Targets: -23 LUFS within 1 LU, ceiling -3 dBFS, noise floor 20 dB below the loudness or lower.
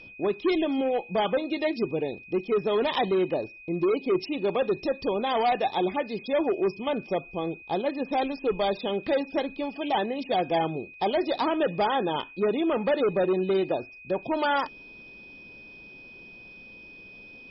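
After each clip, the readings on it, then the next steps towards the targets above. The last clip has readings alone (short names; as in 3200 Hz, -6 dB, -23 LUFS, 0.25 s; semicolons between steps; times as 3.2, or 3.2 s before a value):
steady tone 2500 Hz; tone level -45 dBFS; loudness -27.0 LUFS; peak -14.5 dBFS; loudness target -23.0 LUFS
-> notch 2500 Hz, Q 30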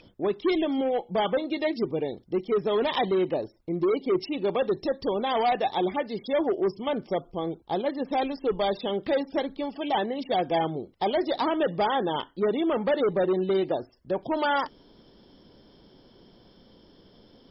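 steady tone none; loudness -27.5 LUFS; peak -15.0 dBFS; loudness target -23.0 LUFS
-> gain +4.5 dB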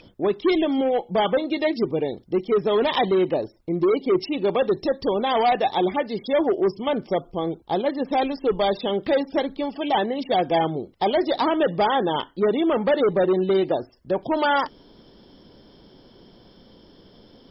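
loudness -23.0 LUFS; peak -10.5 dBFS; noise floor -53 dBFS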